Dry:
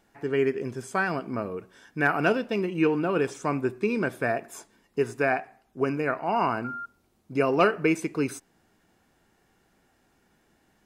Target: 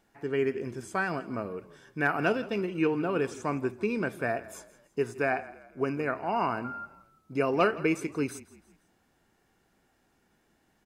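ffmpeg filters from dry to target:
-filter_complex "[0:a]asplit=4[s0][s1][s2][s3];[s1]adelay=165,afreqshift=-31,volume=0.119[s4];[s2]adelay=330,afreqshift=-62,volume=0.0513[s5];[s3]adelay=495,afreqshift=-93,volume=0.0219[s6];[s0][s4][s5][s6]amix=inputs=4:normalize=0,volume=0.668"

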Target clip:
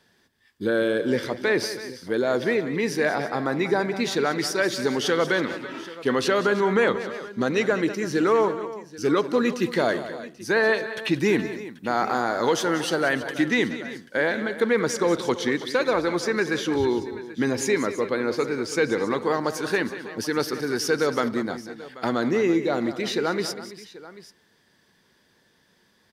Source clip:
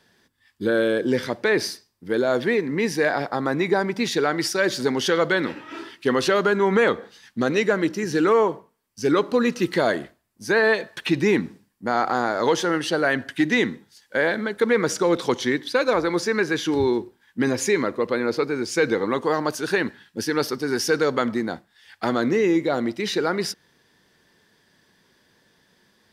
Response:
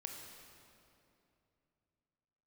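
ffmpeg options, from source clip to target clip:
-filter_complex "[0:a]asettb=1/sr,asplit=3[s0][s1][s2];[s0]atrim=end=11.144[s3];[s1]atrim=start=11.14:end=13.39,asetpts=PTS-STARTPTS,afade=t=in:d=0.004:c=qsin,afade=t=out:st=2.246:d=0.004:c=qsin,highshelf=f=10000:g=9.5[s4];[s2]atrim=start=13.386[s5];[s3][s4]acrossfade=d=0.004:c1=hsin:c2=qsin[s6];[s6][s5]acrossfade=d=0.004:c1=qsin:c2=hsin,aecho=1:1:188|327|785:0.224|0.168|0.126,volume=0.794"

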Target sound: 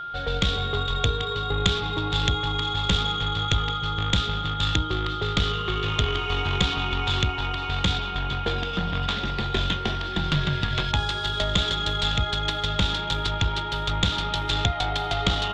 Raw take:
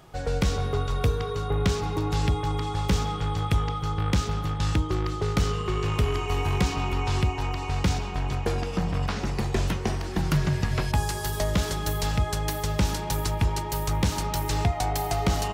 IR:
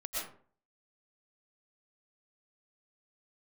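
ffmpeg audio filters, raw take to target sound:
-af "lowpass=f=3500:t=q:w=8.3,aeval=exprs='0.562*(cos(1*acos(clip(val(0)/0.562,-1,1)))-cos(1*PI/2))+0.224*(cos(2*acos(clip(val(0)/0.562,-1,1)))-cos(2*PI/2))':c=same,aeval=exprs='val(0)+0.0316*sin(2*PI*1400*n/s)':c=same,volume=0.841"

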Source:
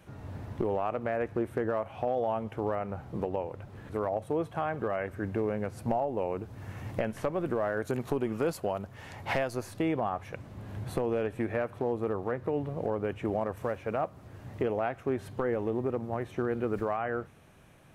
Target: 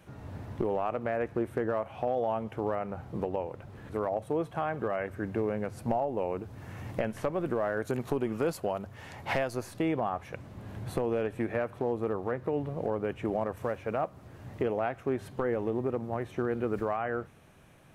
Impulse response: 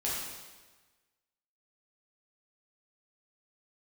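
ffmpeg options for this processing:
-af "bandreject=f=50:t=h:w=6,bandreject=f=100:t=h:w=6"

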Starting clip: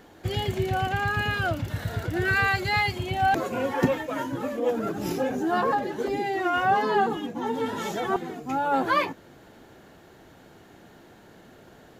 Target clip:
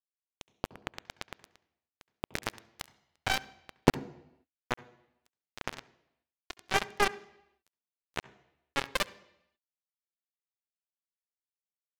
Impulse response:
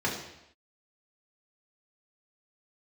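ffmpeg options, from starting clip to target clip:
-filter_complex "[0:a]acrossover=split=2100[s0][s1];[s0]adelay=40[s2];[s2][s1]amix=inputs=2:normalize=0,aeval=exprs='0.501*(cos(1*acos(clip(val(0)/0.501,-1,1)))-cos(1*PI/2))+0.0891*(cos(3*acos(clip(val(0)/0.501,-1,1)))-cos(3*PI/2))+0.0112*(cos(4*acos(clip(val(0)/0.501,-1,1)))-cos(4*PI/2))+0.02*(cos(6*acos(clip(val(0)/0.501,-1,1)))-cos(6*PI/2))+0.0501*(cos(7*acos(clip(val(0)/0.501,-1,1)))-cos(7*PI/2))':c=same,acrusher=bits=3:mix=0:aa=0.5,acompressor=mode=upward:threshold=0.00447:ratio=2.5,asplit=2[s3][s4];[1:a]atrim=start_sample=2205,adelay=67[s5];[s4][s5]afir=irnorm=-1:irlink=0,volume=0.0376[s6];[s3][s6]amix=inputs=2:normalize=0,volume=1.5"

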